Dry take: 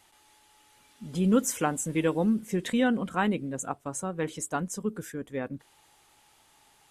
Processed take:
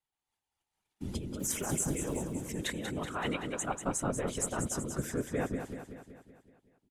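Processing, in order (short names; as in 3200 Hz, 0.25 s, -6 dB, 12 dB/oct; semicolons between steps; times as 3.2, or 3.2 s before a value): 1.36–2.24 block floating point 7-bit; 2.98–3.63 weighting filter A; gate -56 dBFS, range -33 dB; low shelf 77 Hz +10.5 dB; negative-ratio compressor -31 dBFS, ratio -1; whisperiser; feedback echo 0.189 s, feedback 56%, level -7.5 dB; gain -3.5 dB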